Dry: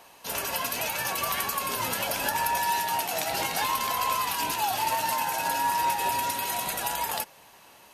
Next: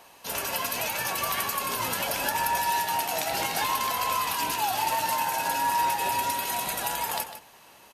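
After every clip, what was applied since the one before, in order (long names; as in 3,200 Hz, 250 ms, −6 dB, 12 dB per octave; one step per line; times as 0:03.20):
slap from a distant wall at 26 metres, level −10 dB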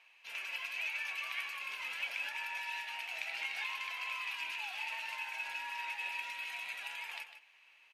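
resonant band-pass 2,400 Hz, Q 4.9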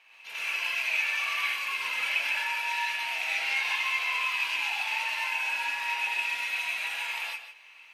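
reverb whose tail is shaped and stops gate 160 ms rising, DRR −6 dB
level +3.5 dB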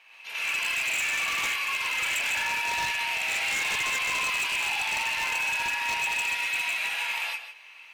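wave folding −26 dBFS
level +3.5 dB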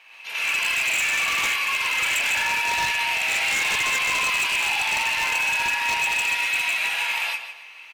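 slap from a distant wall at 48 metres, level −18 dB
level +5 dB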